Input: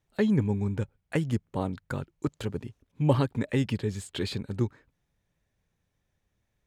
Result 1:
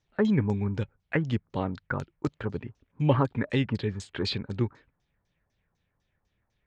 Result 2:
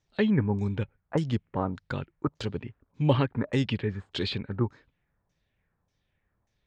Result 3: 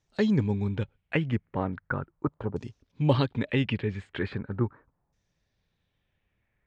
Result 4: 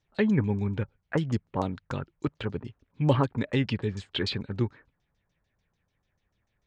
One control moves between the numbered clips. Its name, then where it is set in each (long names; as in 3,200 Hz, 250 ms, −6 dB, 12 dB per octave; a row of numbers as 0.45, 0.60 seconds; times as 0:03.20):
auto-filter low-pass, speed: 4, 1.7, 0.39, 6.8 Hertz